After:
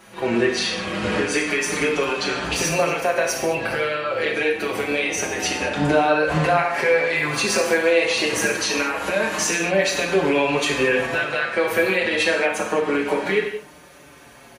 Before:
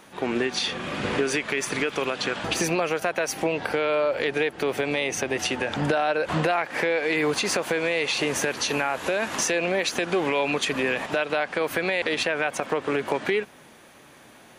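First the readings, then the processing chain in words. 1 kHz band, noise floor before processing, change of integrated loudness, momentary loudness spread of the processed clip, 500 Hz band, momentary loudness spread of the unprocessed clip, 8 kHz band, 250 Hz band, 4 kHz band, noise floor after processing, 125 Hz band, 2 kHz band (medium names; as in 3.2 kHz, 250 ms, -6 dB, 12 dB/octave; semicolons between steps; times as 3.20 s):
+4.0 dB, -51 dBFS, +4.5 dB, 5 LU, +4.5 dB, 3 LU, +4.5 dB, +4.0 dB, +3.5 dB, -46 dBFS, +4.0 dB, +5.0 dB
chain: band-stop 3.5 kHz, Q 15; gated-style reverb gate 250 ms falling, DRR -1 dB; endless flanger 5.6 ms -0.26 Hz; trim +4 dB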